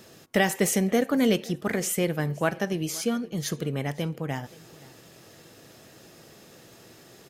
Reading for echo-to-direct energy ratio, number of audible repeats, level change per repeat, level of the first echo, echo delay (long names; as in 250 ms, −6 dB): −22.0 dB, 2, −10.5 dB, −22.5 dB, 523 ms